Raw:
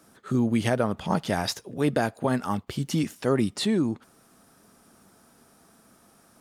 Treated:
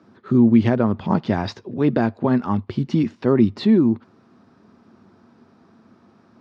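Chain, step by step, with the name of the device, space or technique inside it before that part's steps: guitar cabinet (cabinet simulation 90–4400 Hz, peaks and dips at 99 Hz +7 dB, 230 Hz +7 dB, 360 Hz +7 dB, 1 kHz +5 dB, 3.2 kHz -4 dB); bass shelf 280 Hz +6 dB

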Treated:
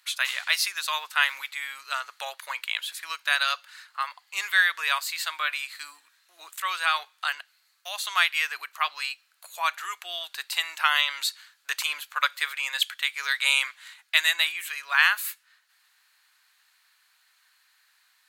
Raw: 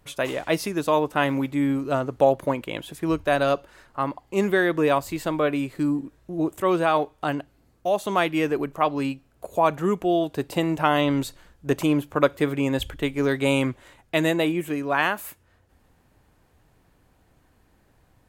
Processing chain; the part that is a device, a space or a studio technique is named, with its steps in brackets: high-pass 190 Hz; headphones lying on a table (high-pass 1.4 kHz 24 dB/octave; peaking EQ 4.2 kHz +8.5 dB 0.33 oct); trim +6 dB

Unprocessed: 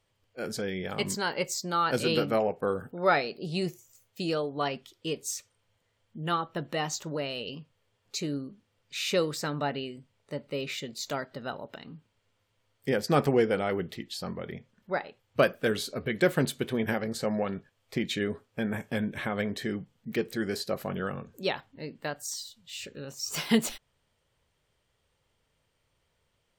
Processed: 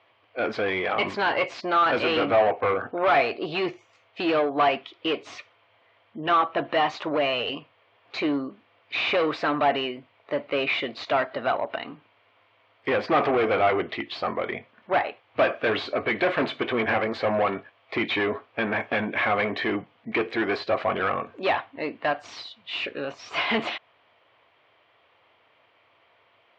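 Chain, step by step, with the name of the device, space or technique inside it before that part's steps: overdrive pedal into a guitar cabinet (overdrive pedal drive 29 dB, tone 6.6 kHz, clips at -8.5 dBFS; cabinet simulation 95–3400 Hz, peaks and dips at 100 Hz +7 dB, 170 Hz -9 dB, 310 Hz +6 dB, 690 Hz +9 dB, 1.1 kHz +7 dB, 2.3 kHz +5 dB); trim -8.5 dB

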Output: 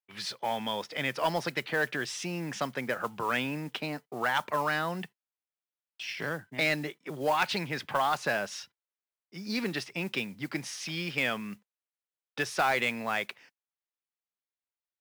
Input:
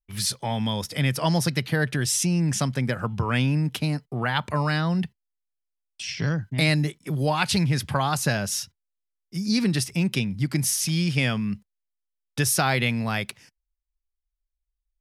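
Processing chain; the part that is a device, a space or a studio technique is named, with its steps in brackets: carbon microphone (band-pass 410–3000 Hz; saturation -17 dBFS, distortion -18 dB; modulation noise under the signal 22 dB)

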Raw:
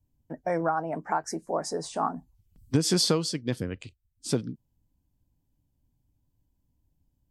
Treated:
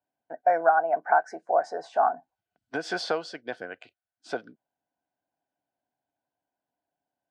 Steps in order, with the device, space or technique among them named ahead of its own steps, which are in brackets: tin-can telephone (band-pass 500–3100 Hz; small resonant body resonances 710/1500 Hz, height 16 dB, ringing for 25 ms); trim -2 dB

